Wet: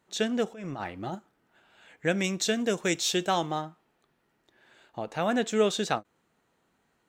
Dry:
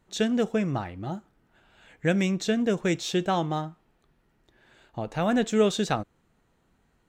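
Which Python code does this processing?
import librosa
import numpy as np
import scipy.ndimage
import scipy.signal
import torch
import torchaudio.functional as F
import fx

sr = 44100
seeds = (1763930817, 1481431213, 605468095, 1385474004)

y = fx.highpass(x, sr, hz=320.0, slope=6)
y = fx.over_compress(y, sr, threshold_db=-36.0, ratio=-1.0, at=(0.52, 1.15))
y = fx.high_shelf(y, sr, hz=4200.0, db=9.5, at=(2.24, 3.51))
y = fx.end_taper(y, sr, db_per_s=530.0)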